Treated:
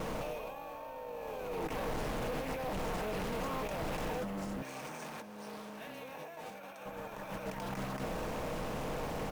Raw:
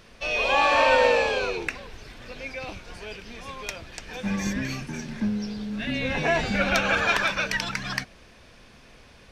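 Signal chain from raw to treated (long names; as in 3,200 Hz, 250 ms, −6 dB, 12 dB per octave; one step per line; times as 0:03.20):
compressor on every frequency bin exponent 0.6
compressor whose output falls as the input rises −31 dBFS, ratio −1
flat-topped bell 2,700 Hz −12 dB 2.3 octaves
hard clipping −30 dBFS, distortion −9 dB
0:04.62–0:06.86: high-pass filter 780 Hz 6 dB per octave
bad sample-rate conversion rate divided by 3×, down filtered, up hold
noise gate with hold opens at −35 dBFS
comb filter 6.5 ms, depth 36%
highs frequency-modulated by the lows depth 0.49 ms
level −4 dB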